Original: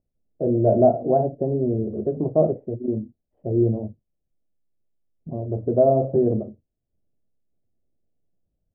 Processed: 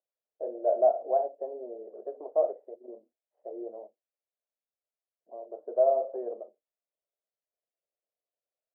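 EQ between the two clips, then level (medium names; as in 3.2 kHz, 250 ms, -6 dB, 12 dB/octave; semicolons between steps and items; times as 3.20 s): inverse Chebyshev high-pass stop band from 160 Hz, stop band 60 dB; distance through air 240 m; -3.5 dB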